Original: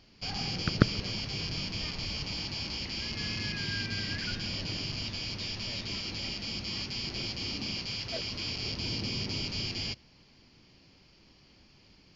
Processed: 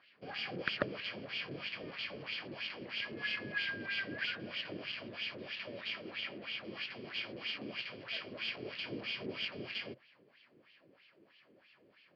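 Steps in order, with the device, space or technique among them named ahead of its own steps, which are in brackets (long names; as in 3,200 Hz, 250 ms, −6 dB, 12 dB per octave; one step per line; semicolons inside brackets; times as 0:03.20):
0:06.14–0:06.60: low-pass filter 4,400 Hz
wah-wah guitar rig (LFO wah 3.1 Hz 360–3,000 Hz, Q 2.4; tube saturation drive 28 dB, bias 0.6; loudspeaker in its box 100–4,000 Hz, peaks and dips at 130 Hz +4 dB, 570 Hz +5 dB, 860 Hz −7 dB, 1,700 Hz +6 dB)
level +8 dB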